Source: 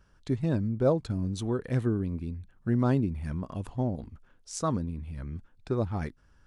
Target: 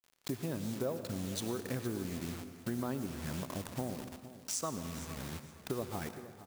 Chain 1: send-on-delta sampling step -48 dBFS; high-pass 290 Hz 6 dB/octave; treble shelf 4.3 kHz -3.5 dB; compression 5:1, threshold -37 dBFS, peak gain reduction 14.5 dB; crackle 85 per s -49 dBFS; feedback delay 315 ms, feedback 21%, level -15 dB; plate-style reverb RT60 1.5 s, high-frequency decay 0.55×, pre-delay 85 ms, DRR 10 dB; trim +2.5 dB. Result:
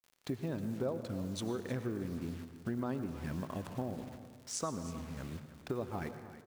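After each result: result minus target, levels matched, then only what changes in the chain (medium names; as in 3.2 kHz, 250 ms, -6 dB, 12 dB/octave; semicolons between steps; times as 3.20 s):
echo 149 ms early; send-on-delta sampling: distortion -7 dB; 8 kHz band -4.0 dB
change: feedback delay 464 ms, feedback 21%, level -15 dB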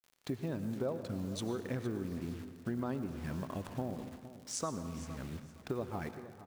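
send-on-delta sampling: distortion -7 dB; 8 kHz band -4.0 dB
change: send-on-delta sampling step -41 dBFS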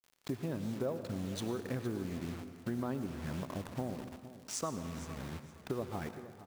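8 kHz band -4.0 dB
change: treble shelf 4.3 kHz +7.5 dB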